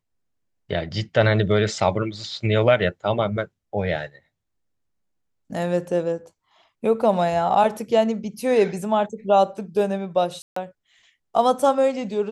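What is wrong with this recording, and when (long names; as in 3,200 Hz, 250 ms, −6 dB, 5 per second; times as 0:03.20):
0:10.42–0:10.56: drop-out 144 ms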